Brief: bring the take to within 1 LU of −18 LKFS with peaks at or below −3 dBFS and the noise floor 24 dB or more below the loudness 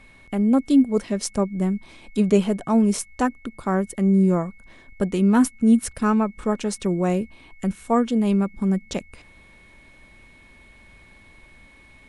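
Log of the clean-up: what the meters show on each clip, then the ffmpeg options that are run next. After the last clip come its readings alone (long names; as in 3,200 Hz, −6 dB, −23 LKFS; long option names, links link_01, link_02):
interfering tone 2,200 Hz; level of the tone −51 dBFS; integrated loudness −22.0 LKFS; sample peak −5.5 dBFS; target loudness −18.0 LKFS
→ -af "bandreject=frequency=2200:width=30"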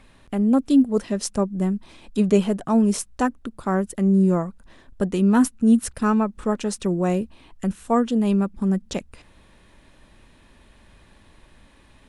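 interfering tone none found; integrated loudness −22.0 LKFS; sample peak −5.5 dBFS; target loudness −18.0 LKFS
→ -af "volume=4dB,alimiter=limit=-3dB:level=0:latency=1"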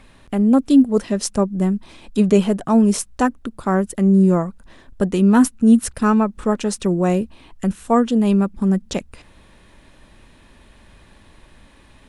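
integrated loudness −18.0 LKFS; sample peak −3.0 dBFS; background noise floor −50 dBFS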